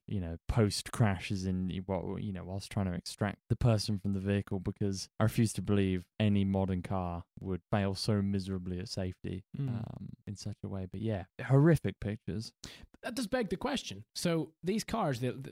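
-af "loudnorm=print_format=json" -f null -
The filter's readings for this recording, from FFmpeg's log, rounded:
"input_i" : "-34.0",
"input_tp" : "-13.6",
"input_lra" : "3.3",
"input_thresh" : "-44.3",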